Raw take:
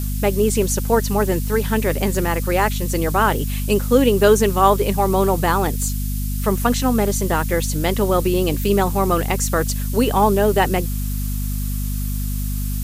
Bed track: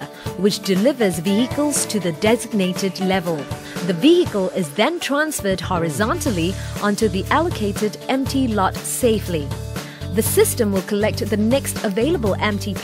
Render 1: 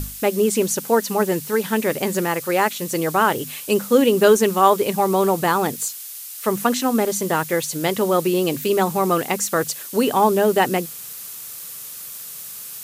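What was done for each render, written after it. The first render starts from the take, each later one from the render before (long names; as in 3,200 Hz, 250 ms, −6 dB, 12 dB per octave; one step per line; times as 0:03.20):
mains-hum notches 50/100/150/200/250 Hz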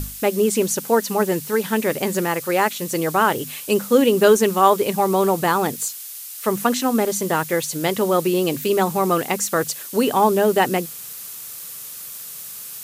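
no processing that can be heard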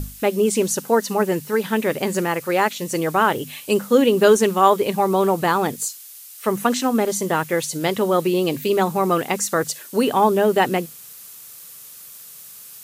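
noise reduction from a noise print 6 dB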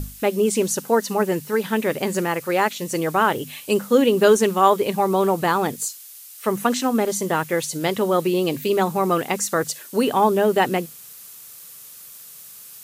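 level −1 dB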